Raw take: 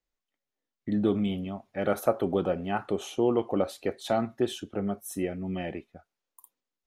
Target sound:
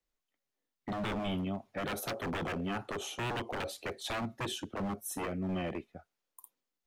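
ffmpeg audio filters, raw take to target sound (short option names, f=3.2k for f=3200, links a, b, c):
-filter_complex "[0:a]acrossover=split=120|780|2300[a][b][c][d];[b]aeval=exprs='0.0282*(abs(mod(val(0)/0.0282+3,4)-2)-1)':c=same[e];[c]acompressor=threshold=-48dB:ratio=6[f];[a][e][f][d]amix=inputs=4:normalize=0"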